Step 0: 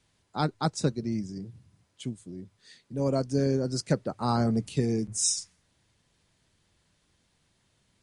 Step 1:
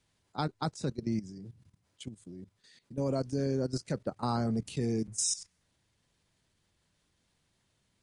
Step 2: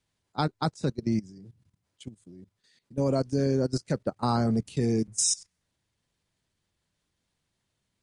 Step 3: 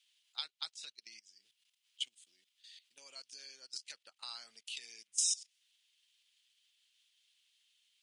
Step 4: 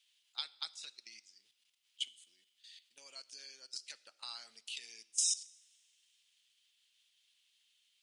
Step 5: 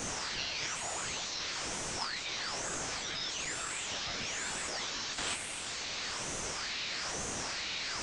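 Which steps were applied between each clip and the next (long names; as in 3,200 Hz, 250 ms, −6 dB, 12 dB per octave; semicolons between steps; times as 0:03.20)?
output level in coarse steps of 15 dB
expander for the loud parts 1.5 to 1, over −50 dBFS; level +6 dB
downward compressor 3 to 1, threshold −38 dBFS, peak gain reduction 12.5 dB; high-pass with resonance 3,000 Hz, resonance Q 3.5; level +3.5 dB
coupled-rooms reverb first 0.75 s, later 2.7 s, from −18 dB, DRR 16.5 dB
linear delta modulator 32 kbit/s, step −31.5 dBFS; chorus effect 0.62 Hz, delay 20 ms, depth 3.1 ms; ring modulator whose carrier an LFO sweeps 1,900 Hz, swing 65%, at 1.1 Hz; level +6.5 dB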